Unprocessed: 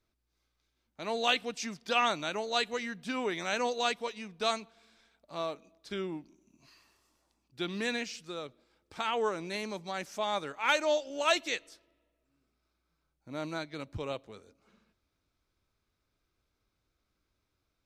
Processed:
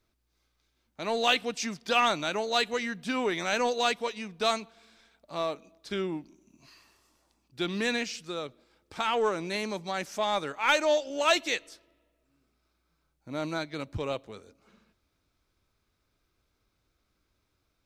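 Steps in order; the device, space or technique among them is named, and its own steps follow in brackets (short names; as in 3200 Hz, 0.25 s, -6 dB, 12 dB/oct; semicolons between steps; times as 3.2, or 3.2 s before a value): parallel distortion (in parallel at -9 dB: hard clip -30 dBFS, distortion -7 dB); on the sum: gain +2 dB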